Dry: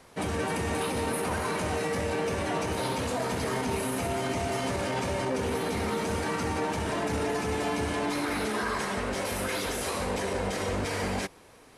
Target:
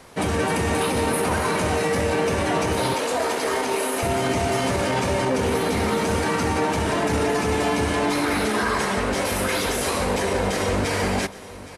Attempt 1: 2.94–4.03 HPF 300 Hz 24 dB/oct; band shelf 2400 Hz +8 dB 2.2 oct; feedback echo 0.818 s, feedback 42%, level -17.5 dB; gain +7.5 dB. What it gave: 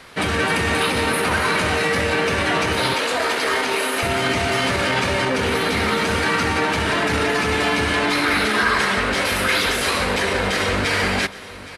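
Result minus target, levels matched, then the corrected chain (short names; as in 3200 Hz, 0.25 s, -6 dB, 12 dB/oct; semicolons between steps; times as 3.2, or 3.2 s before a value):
2000 Hz band +4.5 dB
2.94–4.03 HPF 300 Hz 24 dB/oct; feedback echo 0.818 s, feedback 42%, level -17.5 dB; gain +7.5 dB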